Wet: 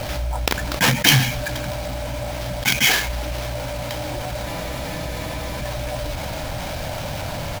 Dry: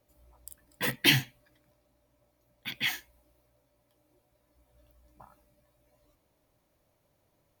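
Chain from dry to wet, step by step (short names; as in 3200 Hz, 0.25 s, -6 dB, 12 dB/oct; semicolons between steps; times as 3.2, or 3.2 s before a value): comb 1.3 ms, depth 76%; sample-rate reducer 8900 Hz, jitter 20%; spectral freeze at 4.47, 1.14 s; fast leveller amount 70%; gain +4 dB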